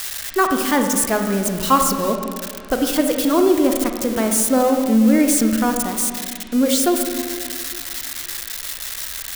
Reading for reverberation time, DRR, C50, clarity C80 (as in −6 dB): 2.0 s, 4.0 dB, 4.5 dB, 6.0 dB